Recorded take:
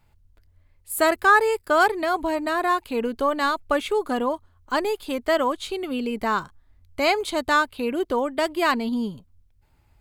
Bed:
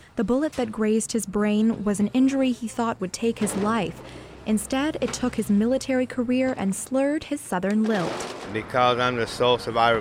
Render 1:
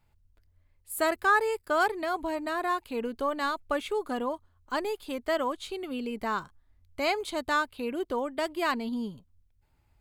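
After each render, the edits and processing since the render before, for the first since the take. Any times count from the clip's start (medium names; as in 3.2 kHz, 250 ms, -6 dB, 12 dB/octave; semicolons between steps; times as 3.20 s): trim -7 dB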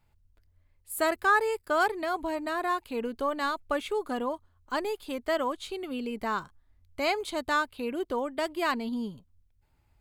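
no audible change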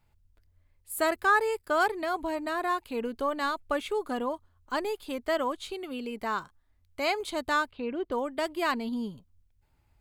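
5.73–7.20 s: bass shelf 240 Hz -5.5 dB; 7.71–8.12 s: distance through air 210 m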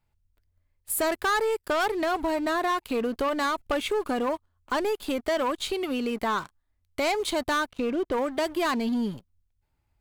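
waveshaping leveller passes 3; compression 2:1, threshold -28 dBFS, peak gain reduction 6.5 dB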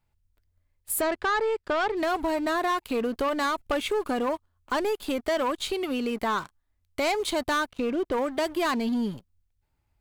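1.01–1.97 s: distance through air 120 m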